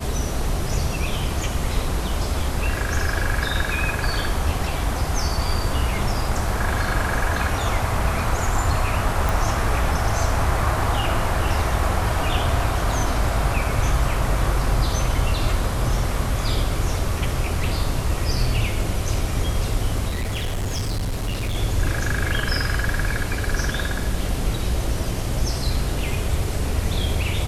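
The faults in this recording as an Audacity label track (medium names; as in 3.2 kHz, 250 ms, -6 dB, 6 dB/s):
9.290000	9.290000	pop
20.080000	21.560000	clipped -21 dBFS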